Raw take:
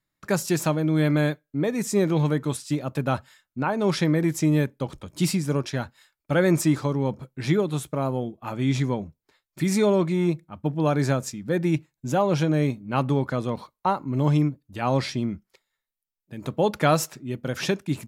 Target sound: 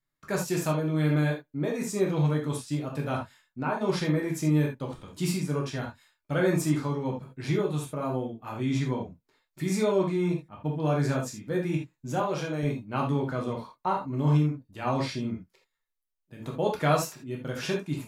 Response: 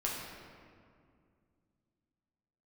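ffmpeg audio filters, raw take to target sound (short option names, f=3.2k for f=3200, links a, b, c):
-filter_complex "[0:a]asettb=1/sr,asplit=3[a][b][c];[a]atrim=end=12.204[d];[b]atrim=start=12.2:end=12.63,asetpts=PTS-STARTPTS,afade=t=in:d=0.004:c=qsin,afade=t=out:st=0.426:d=0.004:c=qsin,lowshelf=f=230:g=-11.5[e];[c]atrim=start=12.626[f];[d][e]acrossfade=d=0.004:c1=hsin:c2=qsin[g];[g][f]acrossfade=d=0.004:c1=qsin:c2=hsin[h];[1:a]atrim=start_sample=2205,atrim=end_sample=3969[i];[h][i]afir=irnorm=-1:irlink=0,volume=-6.5dB"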